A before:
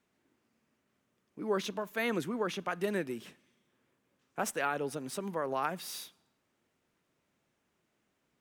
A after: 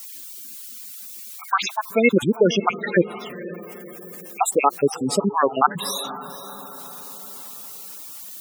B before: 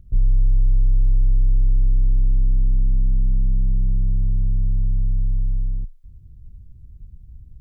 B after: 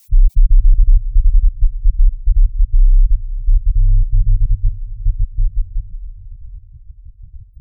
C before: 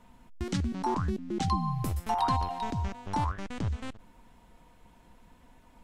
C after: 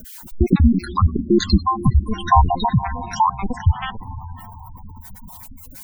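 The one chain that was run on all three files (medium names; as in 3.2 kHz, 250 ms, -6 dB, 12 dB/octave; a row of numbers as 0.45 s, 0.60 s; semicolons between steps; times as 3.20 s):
random holes in the spectrogram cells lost 61%; added noise blue -57 dBFS; echo that smears into a reverb 500 ms, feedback 50%, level -14 dB; spectral gate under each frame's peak -15 dB strong; peak normalisation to -1.5 dBFS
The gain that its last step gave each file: +19.0 dB, +8.0 dB, +19.0 dB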